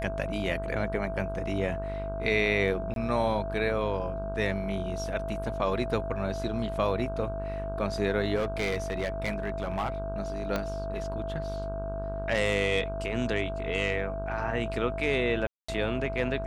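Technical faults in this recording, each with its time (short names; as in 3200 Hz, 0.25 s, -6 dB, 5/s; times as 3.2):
buzz 50 Hz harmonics 32 -36 dBFS
tone 660 Hz -34 dBFS
2.94–2.96 gap 22 ms
8.35–9.9 clipped -24.5 dBFS
10.56 pop -15 dBFS
15.47–15.69 gap 0.215 s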